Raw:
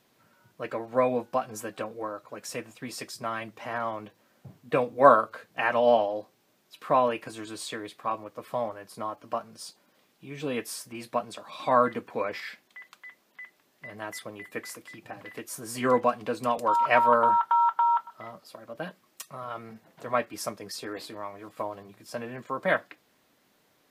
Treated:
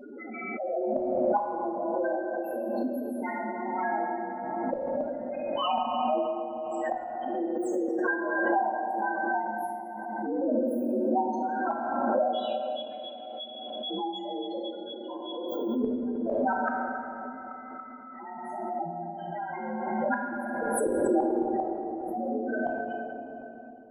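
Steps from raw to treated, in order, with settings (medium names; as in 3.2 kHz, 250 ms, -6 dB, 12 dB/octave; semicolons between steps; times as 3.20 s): frequency axis rescaled in octaves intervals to 125%; high-pass 250 Hz 24 dB/octave; tilt EQ -2.5 dB/octave; 20.10–21.79 s: power-law waveshaper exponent 0.35; loudest bins only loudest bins 4; inverted gate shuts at -24 dBFS, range -35 dB; simulated room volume 220 m³, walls hard, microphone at 0.62 m; swell ahead of each attack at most 23 dB/s; trim +6 dB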